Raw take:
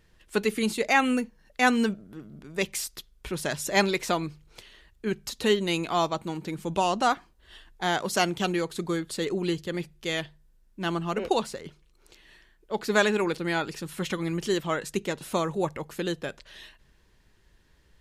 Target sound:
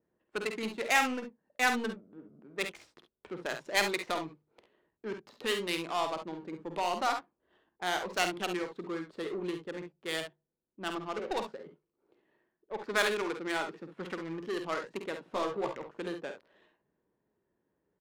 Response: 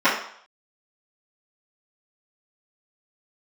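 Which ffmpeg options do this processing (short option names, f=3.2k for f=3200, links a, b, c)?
-filter_complex "[0:a]highpass=280,acrossover=split=940[a][b];[a]asoftclip=type=tanh:threshold=-26.5dB[c];[c][b]amix=inputs=2:normalize=0,asettb=1/sr,asplit=3[d][e][f];[d]atrim=end=15.324[g];[e]atrim=start=15.32:end=15.72,asetpts=PTS-STARTPTS,afade=t=in:d=0.004:c=qsin,afade=t=out:st=0.396:d=0.004:c=qsin,asplit=2[h][i];[i]adelay=15,volume=-4.5dB[j];[h][j]amix=inputs=2:normalize=0,atrim=end_sample=17640[k];[f]atrim=start=15.716[l];[g][k]acrossfade=d=0.004:c1=hsin:c2=qsin[m];[m][l]acrossfade=d=0.004:c1=qsin:c2=hsin,adynamicsmooth=sensitivity=3:basefreq=700,aecho=1:1:50|67:0.376|0.316,adynamicequalizer=threshold=0.01:dfrequency=2600:dqfactor=0.7:tfrequency=2600:tqfactor=0.7:attack=5:release=100:ratio=0.375:range=2:mode=boostabove:tftype=highshelf,volume=-4.5dB"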